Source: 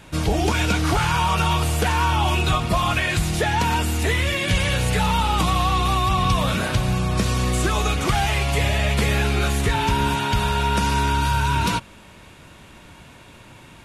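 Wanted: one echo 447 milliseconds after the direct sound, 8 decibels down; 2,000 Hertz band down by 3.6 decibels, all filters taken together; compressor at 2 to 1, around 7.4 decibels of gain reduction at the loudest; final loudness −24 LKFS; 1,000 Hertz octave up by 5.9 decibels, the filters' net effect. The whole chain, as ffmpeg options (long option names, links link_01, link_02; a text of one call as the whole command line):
ffmpeg -i in.wav -af "equalizer=frequency=1000:width_type=o:gain=8.5,equalizer=frequency=2000:width_type=o:gain=-8,acompressor=threshold=-27dB:ratio=2,aecho=1:1:447:0.398,volume=1dB" out.wav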